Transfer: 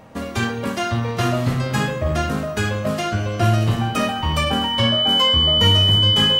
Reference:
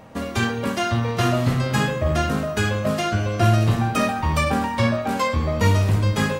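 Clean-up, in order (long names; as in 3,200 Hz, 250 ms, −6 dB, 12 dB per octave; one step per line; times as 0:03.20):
notch filter 3,000 Hz, Q 30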